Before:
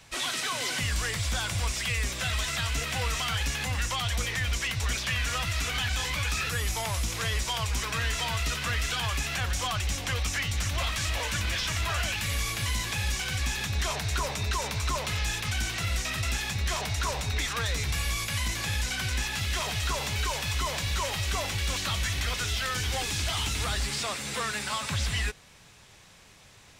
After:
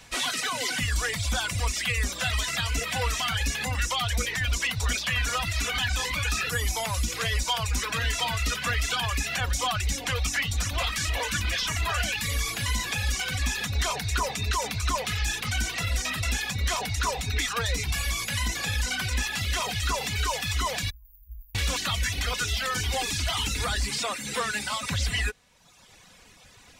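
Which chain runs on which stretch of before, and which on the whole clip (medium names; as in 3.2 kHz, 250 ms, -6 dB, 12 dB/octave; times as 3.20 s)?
20.90–21.55 s: inverse Chebyshev band-stop 110–8600 Hz, stop band 50 dB + upward compressor, threshold -55 dBFS
whole clip: reverb removal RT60 1.1 s; comb 4.1 ms, depth 31%; trim +3.5 dB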